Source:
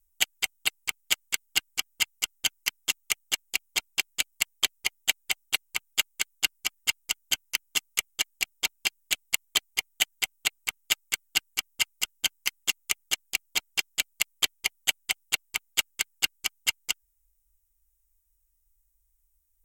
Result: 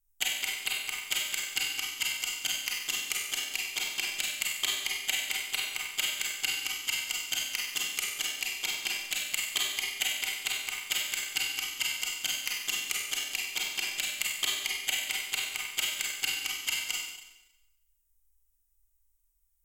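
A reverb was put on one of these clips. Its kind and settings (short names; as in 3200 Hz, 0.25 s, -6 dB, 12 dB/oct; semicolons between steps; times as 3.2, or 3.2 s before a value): Schroeder reverb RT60 0.96 s, combs from 31 ms, DRR -3.5 dB; gain -7 dB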